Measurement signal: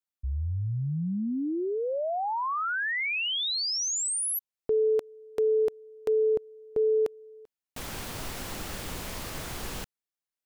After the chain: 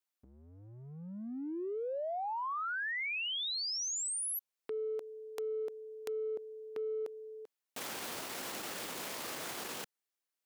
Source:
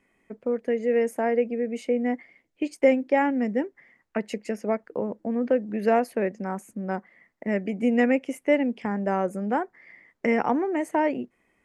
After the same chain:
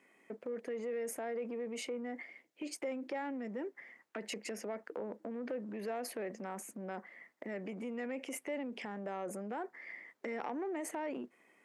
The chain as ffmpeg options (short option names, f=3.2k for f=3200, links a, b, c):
-af "acompressor=threshold=-38dB:ratio=6:attack=0.93:release=25:knee=1:detection=peak,highpass=280,volume=2dB"